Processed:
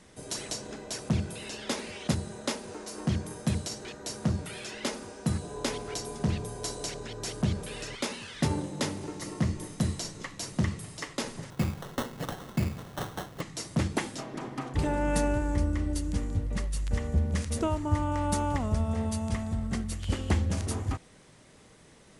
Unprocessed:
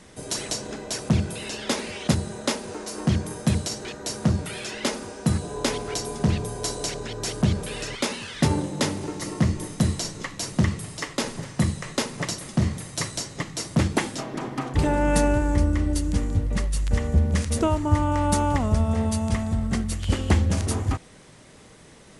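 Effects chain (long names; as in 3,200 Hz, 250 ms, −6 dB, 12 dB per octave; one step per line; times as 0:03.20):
0:11.50–0:13.41: sample-rate reduction 2,400 Hz, jitter 0%
level −6.5 dB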